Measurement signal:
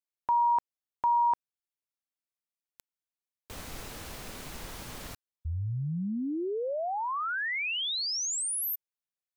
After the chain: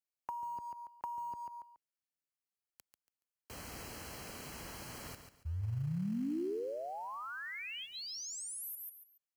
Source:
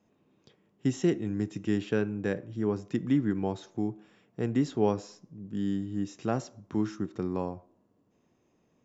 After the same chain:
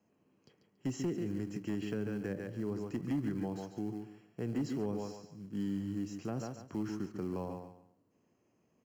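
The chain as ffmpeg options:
ffmpeg -i in.wav -filter_complex "[0:a]highpass=58,aecho=1:1:141|282|423:0.376|0.101|0.0274,asplit=2[link_01][link_02];[link_02]acrusher=bits=3:mode=log:mix=0:aa=0.000001,volume=-9.5dB[link_03];[link_01][link_03]amix=inputs=2:normalize=0,acrossover=split=390[link_04][link_05];[link_05]acompressor=threshold=-36dB:ratio=10:attack=41:release=164:knee=2.83:detection=peak[link_06];[link_04][link_06]amix=inputs=2:normalize=0,asoftclip=type=hard:threshold=-17.5dB,alimiter=limit=-21dB:level=0:latency=1:release=44,asuperstop=centerf=3600:order=8:qfactor=6.3,volume=-7dB" out.wav

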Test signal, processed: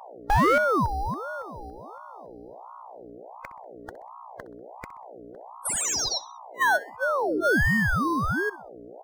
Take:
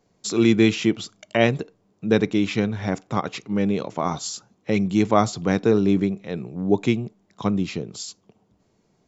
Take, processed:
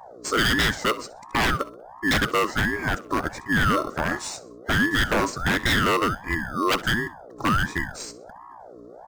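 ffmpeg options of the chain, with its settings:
ffmpeg -i in.wav -filter_complex "[0:a]afftfilt=real='real(if(lt(b,1008),b+24*(1-2*mod(floor(b/24),2)),b),0)':imag='imag(if(lt(b,1008),b+24*(1-2*mod(floor(b/24),2)),b),0)':win_size=2048:overlap=0.75,equalizer=frequency=1200:width_type=o:width=2:gain=6,afftfilt=real='re*(1-between(b*sr/4096,1500,4300))':imag='im*(1-between(b*sr/4096,1500,4300))':win_size=4096:overlap=0.75,adynamicequalizer=threshold=0.0501:dfrequency=660:dqfactor=2.1:tfrequency=660:tqfactor=2.1:attack=5:release=100:ratio=0.375:range=2:mode=cutabove:tftype=bell,asplit=2[link_01][link_02];[link_02]acrusher=samples=9:mix=1:aa=0.000001,volume=-9.5dB[link_03];[link_01][link_03]amix=inputs=2:normalize=0,aeval=exprs='val(0)+0.01*(sin(2*PI*60*n/s)+sin(2*PI*2*60*n/s)/2+sin(2*PI*3*60*n/s)/3+sin(2*PI*4*60*n/s)/4+sin(2*PI*5*60*n/s)/5)':channel_layout=same,aeval=exprs='0.237*(abs(mod(val(0)/0.237+3,4)-2)-1)':channel_layout=same,asplit=2[link_04][link_05];[link_05]aecho=0:1:64|128|192:0.112|0.0426|0.0162[link_06];[link_04][link_06]amix=inputs=2:normalize=0,aeval=exprs='val(0)*sin(2*PI*690*n/s+690*0.5/1.4*sin(2*PI*1.4*n/s))':channel_layout=same" out.wav

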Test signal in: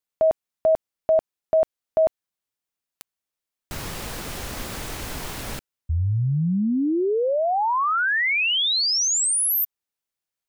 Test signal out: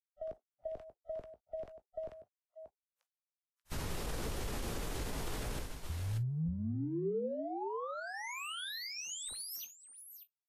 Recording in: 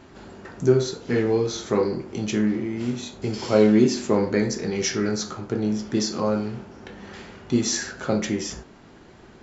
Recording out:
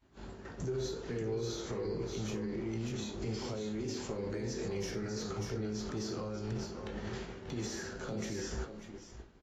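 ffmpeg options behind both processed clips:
ffmpeg -i in.wav -filter_complex "[0:a]acrossover=split=410|1400[link_01][link_02][link_03];[link_03]asoftclip=type=tanh:threshold=-26dB[link_04];[link_01][link_02][link_04]amix=inputs=3:normalize=0,acompressor=threshold=-35dB:ratio=4:attack=1.7:release=41:knee=1:detection=rms,lowshelf=frequency=86:gain=11.5,asplit=2[link_05][link_06];[link_06]aecho=0:1:64|586:0.126|0.447[link_07];[link_05][link_07]amix=inputs=2:normalize=0,agate=range=-33dB:threshold=-32dB:ratio=3:release=199:detection=peak,alimiter=level_in=7dB:limit=-24dB:level=0:latency=1:release=27,volume=-7dB,acrossover=split=140|480|1400|3600[link_08][link_09][link_10][link_11][link_12];[link_08]acompressor=threshold=-39dB:ratio=8[link_13];[link_09]acompressor=threshold=-48dB:ratio=2[link_14];[link_10]acompressor=threshold=-49dB:ratio=5[link_15];[link_11]acompressor=threshold=-55dB:ratio=4[link_16];[link_12]acompressor=threshold=-51dB:ratio=3[link_17];[link_13][link_14][link_15][link_16][link_17]amix=inputs=5:normalize=0,adynamicequalizer=threshold=0.002:dfrequency=430:dqfactor=2.2:tfrequency=430:tqfactor=2.2:attack=5:release=100:ratio=0.417:range=2.5:mode=boostabove:tftype=bell,asplit=2[link_18][link_19];[link_19]adelay=18,volume=-12dB[link_20];[link_18][link_20]amix=inputs=2:normalize=0,volume=2.5dB" -ar 44100 -c:a libvorbis -b:a 32k out.ogg

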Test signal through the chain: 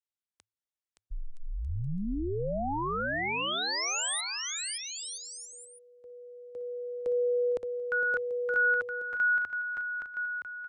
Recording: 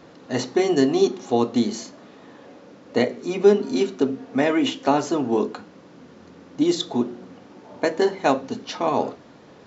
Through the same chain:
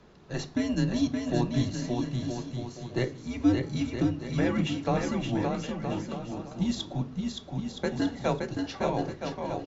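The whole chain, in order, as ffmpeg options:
ffmpeg -i in.wav -af "aresample=22050,aresample=44100,aecho=1:1:570|969|1248|1444|1581:0.631|0.398|0.251|0.158|0.1,afreqshift=-110,volume=-8.5dB" out.wav

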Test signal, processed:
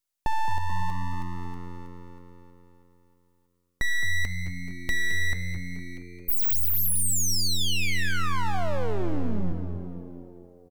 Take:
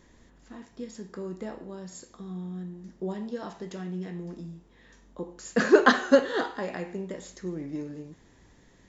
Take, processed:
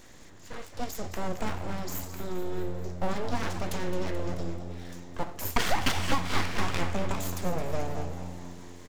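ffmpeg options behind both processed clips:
ffmpeg -i in.wav -filter_complex "[0:a]aeval=exprs='abs(val(0))':channel_layout=same,flanger=delay=2.9:depth=6:regen=-87:speed=0.84:shape=sinusoidal,asplit=2[link_01][link_02];[link_02]adelay=229,lowpass=frequency=3500:poles=1,volume=-15.5dB,asplit=2[link_03][link_04];[link_04]adelay=229,lowpass=frequency=3500:poles=1,volume=0.53,asplit=2[link_05][link_06];[link_06]adelay=229,lowpass=frequency=3500:poles=1,volume=0.53,asplit=2[link_07][link_08];[link_08]adelay=229,lowpass=frequency=3500:poles=1,volume=0.53,asplit=2[link_09][link_10];[link_10]adelay=229,lowpass=frequency=3500:poles=1,volume=0.53[link_11];[link_03][link_05][link_07][link_09][link_11]amix=inputs=5:normalize=0[link_12];[link_01][link_12]amix=inputs=2:normalize=0,acontrast=76,highshelf=frequency=3700:gain=7,acompressor=threshold=-24dB:ratio=16,asplit=2[link_13][link_14];[link_14]asplit=6[link_15][link_16][link_17][link_18][link_19][link_20];[link_15]adelay=216,afreqshift=88,volume=-12dB[link_21];[link_16]adelay=432,afreqshift=176,volume=-17.5dB[link_22];[link_17]adelay=648,afreqshift=264,volume=-23dB[link_23];[link_18]adelay=864,afreqshift=352,volume=-28.5dB[link_24];[link_19]adelay=1080,afreqshift=440,volume=-34.1dB[link_25];[link_20]adelay=1296,afreqshift=528,volume=-39.6dB[link_26];[link_21][link_22][link_23][link_24][link_25][link_26]amix=inputs=6:normalize=0[link_27];[link_13][link_27]amix=inputs=2:normalize=0,volume=4.5dB" out.wav

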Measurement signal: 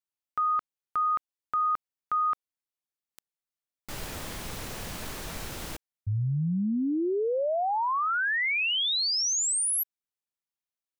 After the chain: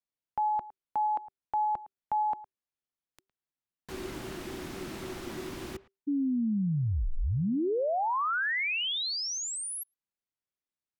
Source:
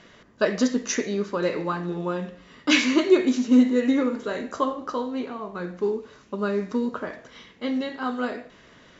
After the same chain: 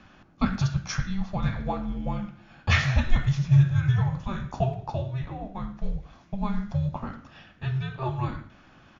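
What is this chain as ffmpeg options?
ffmpeg -i in.wav -filter_complex "[0:a]aemphasis=mode=reproduction:type=cd,asplit=2[link_01][link_02];[link_02]adelay=110,highpass=300,lowpass=3400,asoftclip=type=hard:threshold=-14.5dB,volume=-18dB[link_03];[link_01][link_03]amix=inputs=2:normalize=0,afreqshift=-390,volume=-1.5dB" out.wav

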